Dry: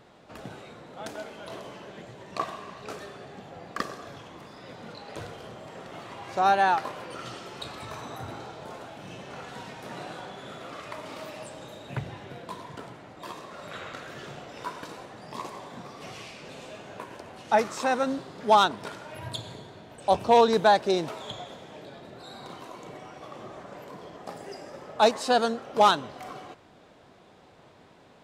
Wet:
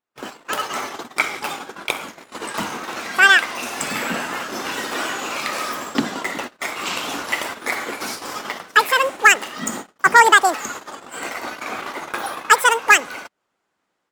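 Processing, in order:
noise gate −43 dBFS, range −34 dB
automatic gain control gain up to 14.5 dB
wrong playback speed 7.5 ips tape played at 15 ips

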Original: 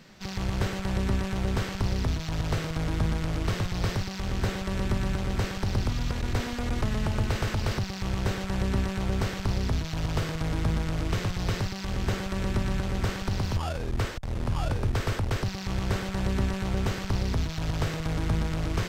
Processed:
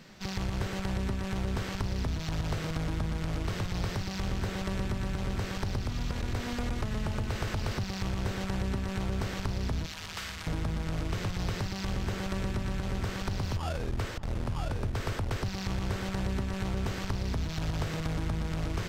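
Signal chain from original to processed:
0:09.86–0:10.47: high-pass filter 1,400 Hz 12 dB per octave
downward compressor, threshold −28 dBFS, peak gain reduction 7.5 dB
feedback echo with a low-pass in the loop 586 ms, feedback 77%, low-pass 2,800 Hz, level −18 dB

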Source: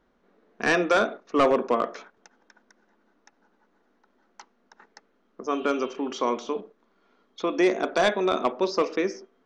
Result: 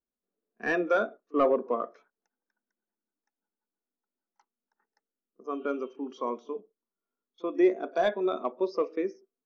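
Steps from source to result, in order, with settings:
echo ahead of the sound 37 ms −22 dB
every bin expanded away from the loudest bin 1.5 to 1
level −1 dB

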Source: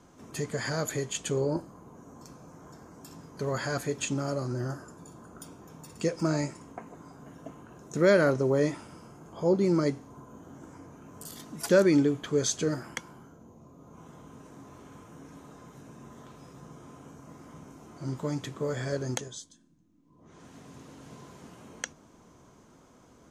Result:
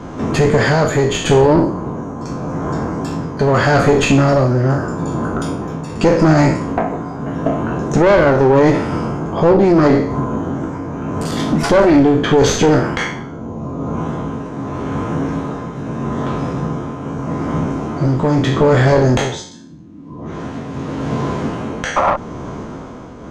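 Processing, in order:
peak hold with a decay on every bin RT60 0.47 s
shaped tremolo triangle 0.81 Hz, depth 60%
hum removal 181.4 Hz, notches 34
in parallel at +2 dB: downward compressor, threshold −40 dBFS, peak gain reduction 19 dB
on the sum: sound drawn into the spectrogram noise, 0:21.96–0:22.17, 510–1,400 Hz −31 dBFS
asymmetric clip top −33.5 dBFS, bottom −16 dBFS
head-to-tape spacing loss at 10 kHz 23 dB
boost into a limiter +24 dB
every ending faded ahead of time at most 350 dB per second
level −1.5 dB

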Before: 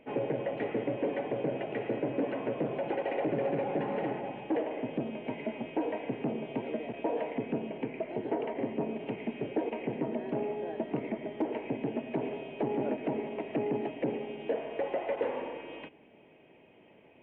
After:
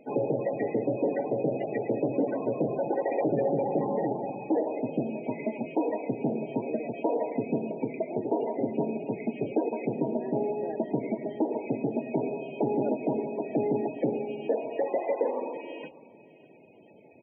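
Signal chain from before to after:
spectral peaks only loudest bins 32
single-tap delay 599 ms −21.5 dB
level +4.5 dB

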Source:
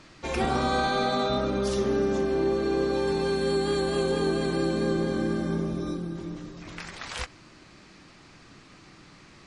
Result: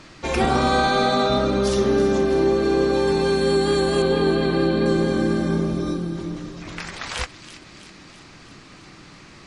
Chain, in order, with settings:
0:04.02–0:04.86: Butterworth low-pass 4,500 Hz
delay with a high-pass on its return 327 ms, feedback 62%, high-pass 2,400 Hz, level −12 dB
level +6.5 dB

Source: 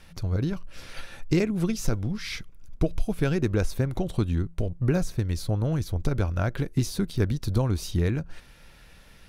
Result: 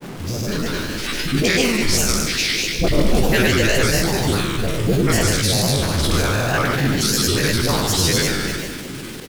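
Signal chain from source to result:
peak hold with a decay on every bin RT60 1.76 s
tilt shelving filter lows −7 dB, about 1,100 Hz
automatic gain control gain up to 8.5 dB
all-pass dispersion highs, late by 141 ms, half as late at 650 Hz
noise in a band 120–410 Hz −35 dBFS
bit reduction 6 bits
echo with shifted repeats 101 ms, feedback 46%, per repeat +35 Hz, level −11 dB
granular cloud, pitch spread up and down by 3 semitones
level that may fall only so fast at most 28 dB per second
level +2 dB

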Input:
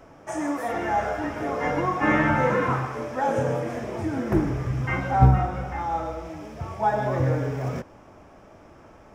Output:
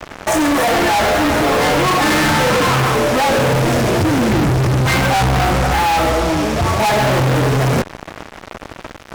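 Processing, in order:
0:03.52–0:04.70: octave-band graphic EQ 125/1,000/4,000 Hz +5/−6/+5 dB
fuzz pedal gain 43 dB, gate −45 dBFS

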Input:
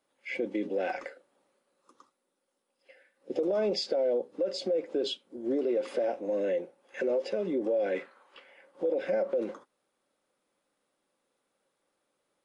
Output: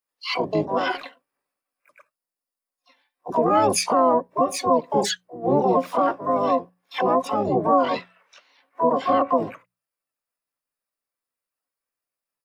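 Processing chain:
spectral dynamics exaggerated over time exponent 1.5
pitch-shifted copies added −12 semitones −4 dB, +5 semitones −1 dB, +12 semitones 0 dB
mains-hum notches 60/120/180 Hz
level +6.5 dB

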